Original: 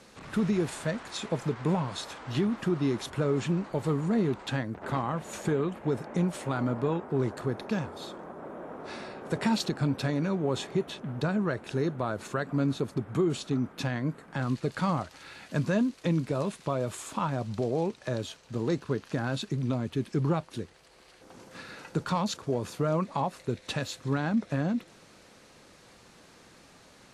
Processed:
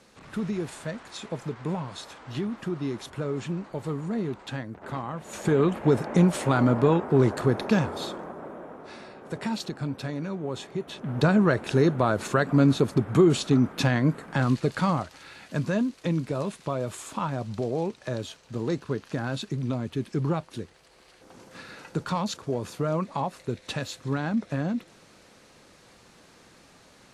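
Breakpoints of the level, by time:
0:05.19 −3 dB
0:05.64 +8 dB
0:07.99 +8 dB
0:08.90 −3.5 dB
0:10.78 −3.5 dB
0:11.24 +8 dB
0:14.25 +8 dB
0:15.29 +0.5 dB

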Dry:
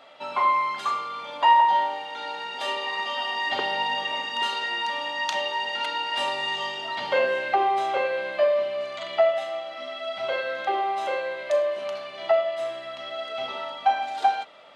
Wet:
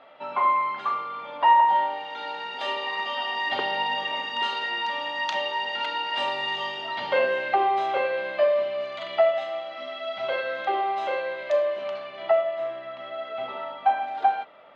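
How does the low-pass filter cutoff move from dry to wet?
0:01.67 2,300 Hz
0:02.11 4,200 Hz
0:11.54 4,200 Hz
0:12.60 2,100 Hz

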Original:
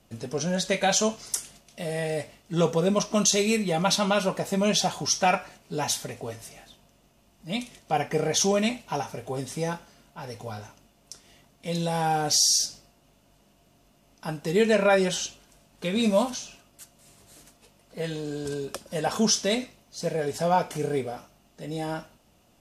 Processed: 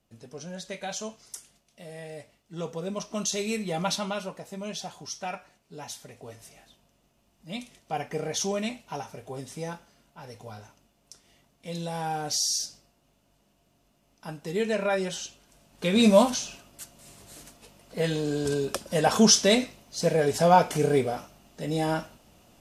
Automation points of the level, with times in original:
0:02.57 −12 dB
0:03.83 −4 dB
0:04.42 −12.5 dB
0:05.96 −12.5 dB
0:06.45 −6 dB
0:15.23 −6 dB
0:16.01 +4.5 dB

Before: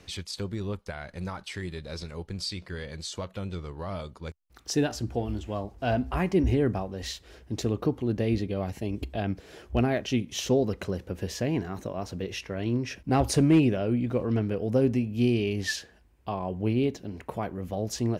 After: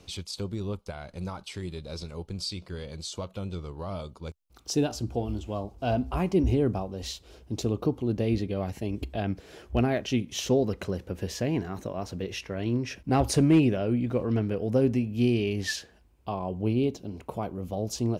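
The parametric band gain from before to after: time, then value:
parametric band 1,800 Hz 0.49 octaves
0:08.02 −11.5 dB
0:08.45 −1.5 dB
0:15.72 −1.5 dB
0:16.82 −13.5 dB

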